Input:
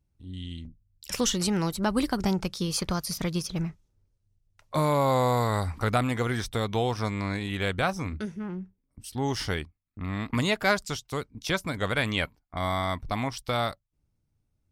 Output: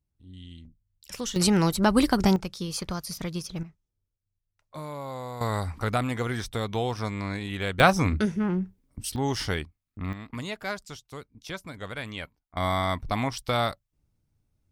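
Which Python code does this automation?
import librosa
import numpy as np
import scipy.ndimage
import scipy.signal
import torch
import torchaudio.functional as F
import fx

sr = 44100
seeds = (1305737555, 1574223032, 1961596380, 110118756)

y = fx.gain(x, sr, db=fx.steps((0.0, -7.0), (1.36, 5.0), (2.36, -3.5), (3.63, -13.0), (5.41, -1.5), (7.8, 8.5), (9.16, 1.0), (10.13, -9.0), (12.57, 2.0)))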